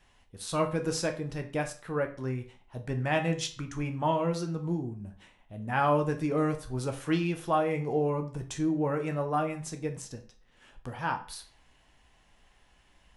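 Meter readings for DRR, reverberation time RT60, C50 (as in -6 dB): 4.5 dB, 0.40 s, 12.5 dB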